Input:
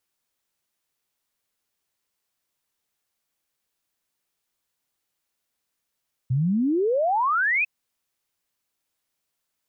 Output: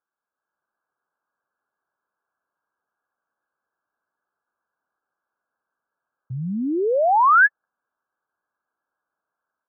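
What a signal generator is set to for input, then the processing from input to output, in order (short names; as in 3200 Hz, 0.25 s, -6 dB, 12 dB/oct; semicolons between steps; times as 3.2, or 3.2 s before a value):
log sweep 120 Hz -> 2600 Hz 1.35 s -19 dBFS
tilt +4.5 dB/oct; AGC gain up to 7 dB; brick-wall FIR low-pass 1700 Hz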